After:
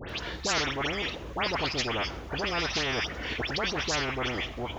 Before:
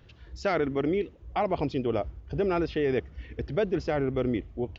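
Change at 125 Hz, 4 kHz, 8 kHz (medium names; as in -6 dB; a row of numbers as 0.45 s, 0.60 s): -3.5 dB, +16.0 dB, no reading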